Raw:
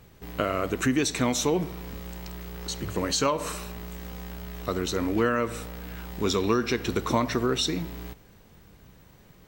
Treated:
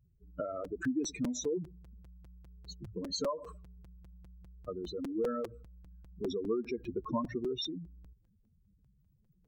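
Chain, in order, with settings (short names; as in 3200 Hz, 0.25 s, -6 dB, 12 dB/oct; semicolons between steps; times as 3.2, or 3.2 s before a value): spectral contrast raised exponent 3.3; crackling interface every 0.20 s, samples 256, repeat, from 0.64; upward expander 1.5:1, over -37 dBFS; gain -7 dB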